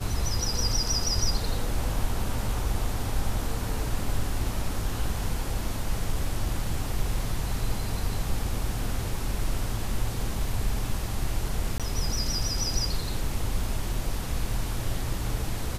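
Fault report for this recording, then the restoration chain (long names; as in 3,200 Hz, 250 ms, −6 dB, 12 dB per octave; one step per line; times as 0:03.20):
0:11.78–0:11.80: drop-out 17 ms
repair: repair the gap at 0:11.78, 17 ms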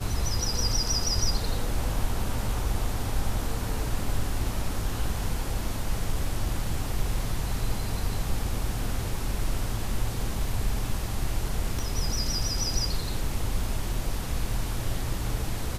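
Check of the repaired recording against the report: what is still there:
none of them is left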